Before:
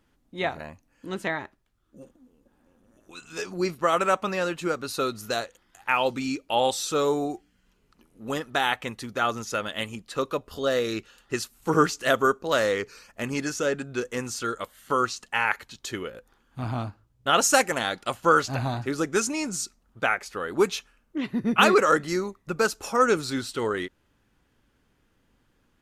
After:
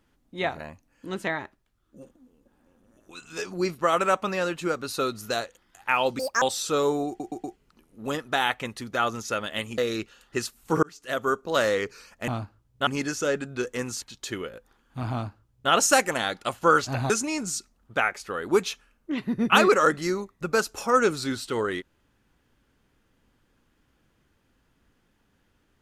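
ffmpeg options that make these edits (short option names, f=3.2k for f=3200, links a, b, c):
-filter_complex "[0:a]asplit=13[a][b][c][d][e][f][g][h][i][j][k][l][m];[a]atrim=end=6.194[n];[b]atrim=start=6.19:end=6.64,asetpts=PTS-STARTPTS,asetrate=86877,aresample=44100[o];[c]atrim=start=6.636:end=7.422[p];[d]atrim=start=7.298:end=7.422[q];[e]atrim=start=7.298:end=7.422[r];[f]atrim=start=7.298:end=7.422[s];[g]atrim=start=7.778:end=10.002[t];[h]atrim=start=10.748:end=11.8,asetpts=PTS-STARTPTS,afade=t=out:st=1.048:d=0.004:c=hsin[u];[i]atrim=start=11.8:end=13.252,asetpts=PTS-STARTPTS,afade=t=in:d=0.7[v];[j]atrim=start=16.728:end=17.322[w];[k]atrim=start=13.248:end=14.402[x];[l]atrim=start=15.628:end=18.712[y];[m]atrim=start=19.158[z];[n][o]acrossfade=d=0.004:c1=hsin:c2=hsin[aa];[aa][p]acrossfade=d=0.004:c1=hsin:c2=hsin[ab];[ab][q]acrossfade=d=0.004:c1=hsin:c2=hsin[ac];[ac][r]acrossfade=d=0.004:c1=hsin:c2=hsin[ad];[ad][s]acrossfade=d=0.004:c1=hsin:c2=hsin[ae];[ae][t]acrossfade=d=0.004:c1=hsin:c2=hsin[af];[u][v]concat=n=2:v=0:a=1[ag];[af][ag]acrossfade=d=0.004:c1=hsin:c2=hsin[ah];[ah][w]acrossfade=d=0.004:c1=hsin:c2=hsin[ai];[ai][x]acrossfade=d=0.004:c1=hsin:c2=hsin[aj];[aj][y]acrossfade=d=0.004:c1=hsin:c2=hsin[ak];[ak][z]acrossfade=d=0.004:c1=hsin:c2=hsin"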